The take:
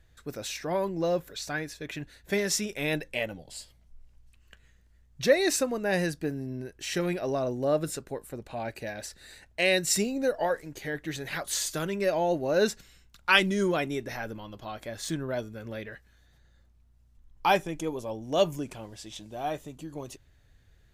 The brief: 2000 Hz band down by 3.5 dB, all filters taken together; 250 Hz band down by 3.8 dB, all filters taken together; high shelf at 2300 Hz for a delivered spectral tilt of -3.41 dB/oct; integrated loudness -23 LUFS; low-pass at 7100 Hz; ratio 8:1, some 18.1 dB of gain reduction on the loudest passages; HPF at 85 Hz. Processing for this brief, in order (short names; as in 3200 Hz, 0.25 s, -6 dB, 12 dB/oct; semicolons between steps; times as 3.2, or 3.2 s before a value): HPF 85 Hz; LPF 7100 Hz; bell 250 Hz -5.5 dB; bell 2000 Hz -7 dB; high shelf 2300 Hz +4.5 dB; compressor 8:1, threshold -37 dBFS; gain +18.5 dB